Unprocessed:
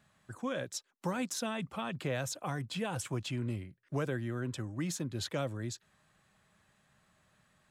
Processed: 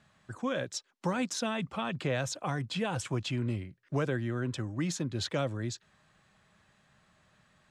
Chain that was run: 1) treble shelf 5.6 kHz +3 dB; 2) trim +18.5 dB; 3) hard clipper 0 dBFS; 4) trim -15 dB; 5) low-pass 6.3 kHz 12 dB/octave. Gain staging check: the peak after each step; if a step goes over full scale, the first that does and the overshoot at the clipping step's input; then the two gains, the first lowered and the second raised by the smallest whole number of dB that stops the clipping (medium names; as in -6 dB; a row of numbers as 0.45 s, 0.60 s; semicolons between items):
-22.5 dBFS, -4.0 dBFS, -4.0 dBFS, -19.0 dBFS, -19.0 dBFS; nothing clips